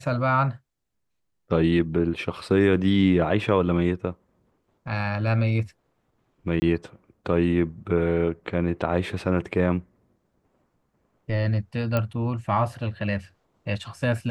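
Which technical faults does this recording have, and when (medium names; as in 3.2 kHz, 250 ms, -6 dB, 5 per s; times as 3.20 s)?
6.60–6.62 s: dropout 20 ms
11.97 s: pop -12 dBFS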